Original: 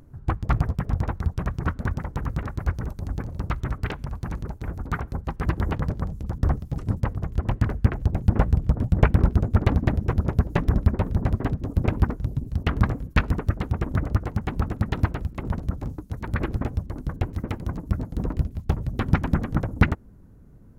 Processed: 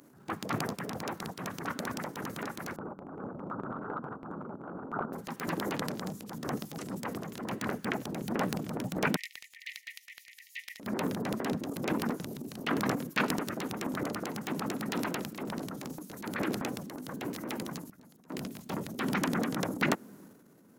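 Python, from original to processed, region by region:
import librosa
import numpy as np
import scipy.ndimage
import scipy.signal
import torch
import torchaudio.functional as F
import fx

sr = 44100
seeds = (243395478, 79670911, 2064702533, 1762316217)

y = fx.chain(x, sr, fx.reverse_delay(ms=247, wet_db=-8.0),
    fx.ellip_lowpass(hz=1400.0, order=4, stop_db=40), at=(2.76, 5.13))
y = fx.chain(y, sr, fx.brickwall_highpass(low_hz=1800.0),
    fx.high_shelf(hz=3300.0, db=-7.0), at=(9.16, 10.8))
y = fx.chain(y, sr, fx.peak_eq(hz=470.0, db=-8.5, octaves=2.9),
    fx.auto_swell(attack_ms=604.0), at=(17.7, 18.3))
y = scipy.signal.sosfilt(scipy.signal.butter(4, 200.0, 'highpass', fs=sr, output='sos'), y)
y = fx.high_shelf(y, sr, hz=2000.0, db=11.0)
y = fx.transient(y, sr, attack_db=-8, sustain_db=9)
y = y * librosa.db_to_amplitude(-2.5)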